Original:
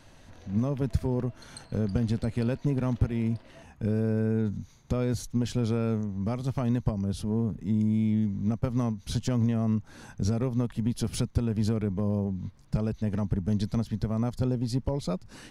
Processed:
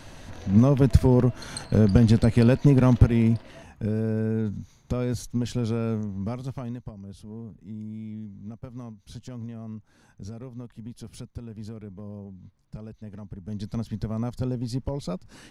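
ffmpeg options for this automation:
-af "volume=10,afade=t=out:st=2.93:d=0.96:silence=0.354813,afade=t=out:st=6.16:d=0.67:silence=0.251189,afade=t=in:st=13.4:d=0.46:silence=0.298538"

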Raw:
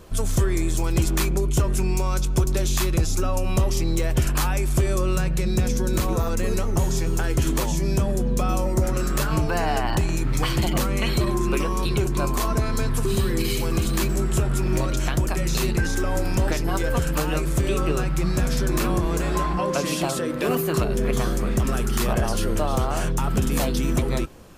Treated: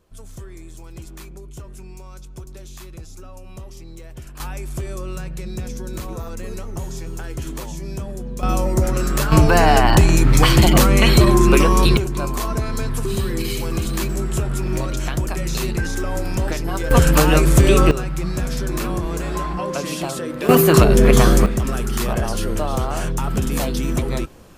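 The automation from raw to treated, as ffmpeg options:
-af "asetnsamples=n=441:p=0,asendcmd='4.4 volume volume -7dB;8.43 volume volume 3.5dB;9.32 volume volume 10dB;11.97 volume volume 0dB;16.91 volume volume 10dB;17.91 volume volume -1dB;20.49 volume volume 11dB;21.46 volume volume 1dB',volume=0.158"

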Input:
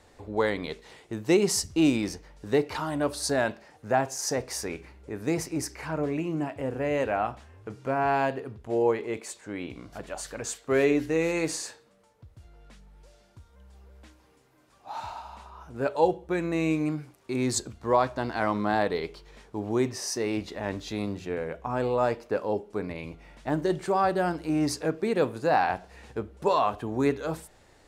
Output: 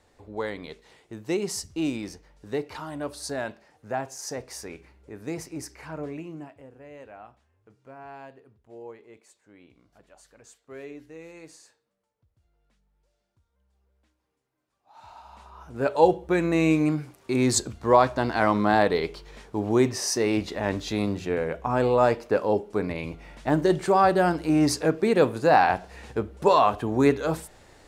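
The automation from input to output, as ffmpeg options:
-af "volume=7.5,afade=t=out:st=6.06:d=0.63:silence=0.237137,afade=t=in:st=14.93:d=0.3:silence=0.251189,afade=t=in:st=15.23:d=0.89:silence=0.281838"

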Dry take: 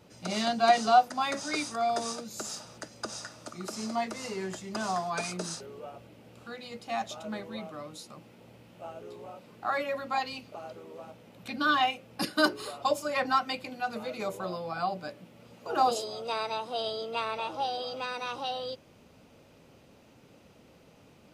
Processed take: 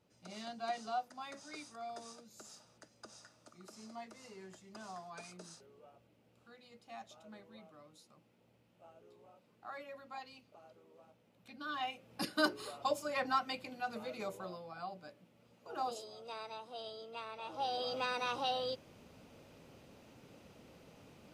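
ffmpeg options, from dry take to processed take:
-af "volume=1.78,afade=t=in:st=11.69:d=0.51:silence=0.316228,afade=t=out:st=14.17:d=0.51:silence=0.473151,afade=t=in:st=17.39:d=0.53:silence=0.251189"

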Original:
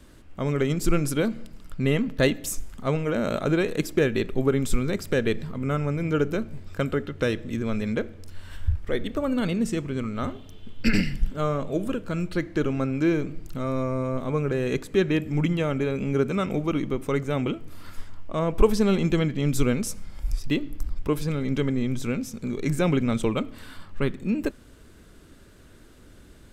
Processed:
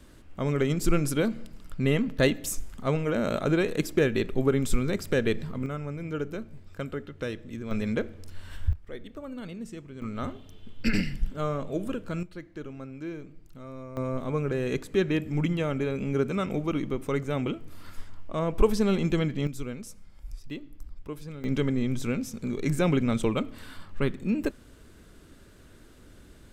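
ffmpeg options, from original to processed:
-af "asetnsamples=n=441:p=0,asendcmd='5.66 volume volume -8.5dB;7.71 volume volume -1.5dB;8.73 volume volume -13.5dB;10.02 volume volume -4dB;12.23 volume volume -14.5dB;13.97 volume volume -3dB;19.47 volume volume -13dB;21.44 volume volume -1.5dB',volume=0.841"

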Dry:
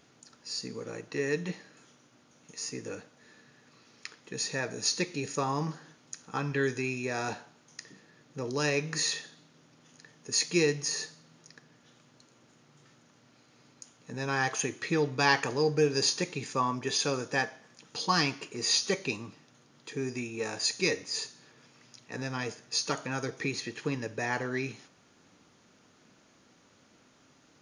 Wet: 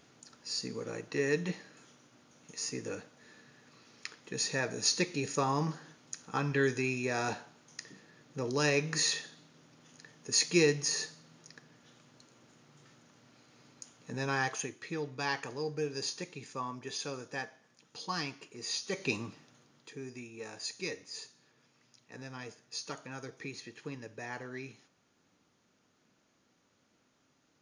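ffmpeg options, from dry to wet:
-af "volume=3.76,afade=t=out:st=14.15:d=0.61:silence=0.334965,afade=t=in:st=18.88:d=0.29:silence=0.266073,afade=t=out:st=19.17:d=0.82:silence=0.251189"

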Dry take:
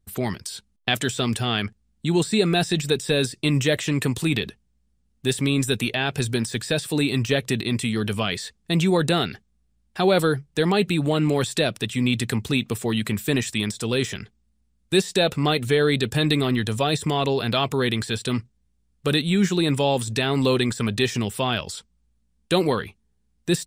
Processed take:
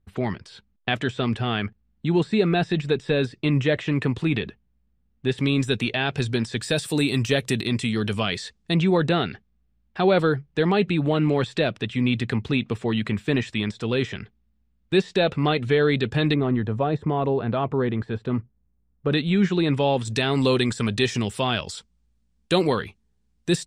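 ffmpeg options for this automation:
-af "asetnsamples=n=441:p=0,asendcmd='5.38 lowpass f 4600;6.62 lowpass f 12000;7.67 lowpass f 6500;8.74 lowpass f 3100;16.34 lowpass f 1200;19.12 lowpass f 3100;20.05 lowpass f 8000',lowpass=2600"

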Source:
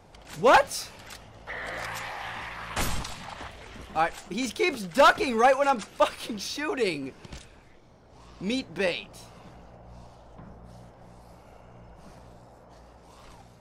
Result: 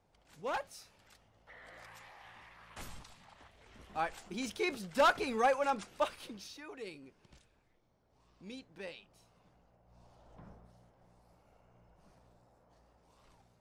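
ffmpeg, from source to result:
-af "volume=1.33,afade=t=in:st=3.51:d=0.62:silence=0.316228,afade=t=out:st=5.89:d=0.75:silence=0.316228,afade=t=in:st=9.86:d=0.63:silence=0.266073,afade=t=out:st=10.49:d=0.23:silence=0.398107"

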